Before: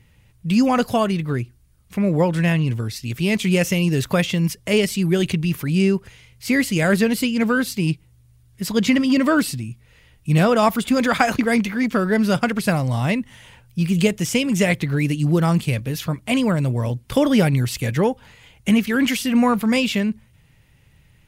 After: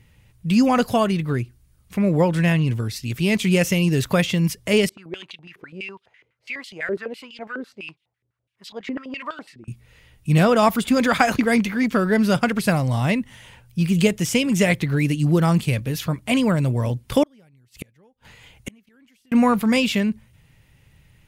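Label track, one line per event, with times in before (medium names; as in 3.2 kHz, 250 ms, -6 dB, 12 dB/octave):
4.890000	9.680000	step-sequenced band-pass 12 Hz 400–3500 Hz
17.230000	19.320000	inverted gate shuts at -17 dBFS, range -37 dB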